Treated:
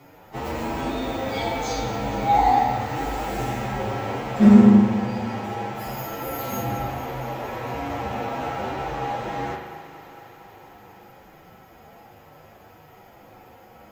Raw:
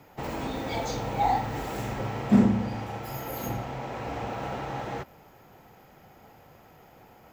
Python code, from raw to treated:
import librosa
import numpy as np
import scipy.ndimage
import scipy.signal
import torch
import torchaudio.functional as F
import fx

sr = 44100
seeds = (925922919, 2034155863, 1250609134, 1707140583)

y = fx.stretch_vocoder(x, sr, factor=1.9)
y = fx.peak_eq(y, sr, hz=140.0, db=-3.0, octaves=0.77)
y = fx.echo_thinned(y, sr, ms=229, feedback_pct=78, hz=170.0, wet_db=-14.0)
y = fx.rev_spring(y, sr, rt60_s=1.1, pass_ms=(39,), chirp_ms=20, drr_db=3.0)
y = y * librosa.db_to_amplitude(4.0)